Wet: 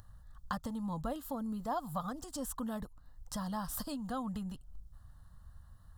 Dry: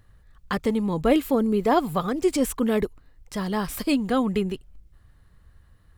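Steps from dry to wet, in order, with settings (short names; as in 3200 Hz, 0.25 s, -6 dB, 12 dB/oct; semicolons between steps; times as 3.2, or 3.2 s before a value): compressor 2.5:1, threshold -35 dBFS, peak gain reduction 14 dB; fixed phaser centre 950 Hz, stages 4; upward compressor, threshold -53 dBFS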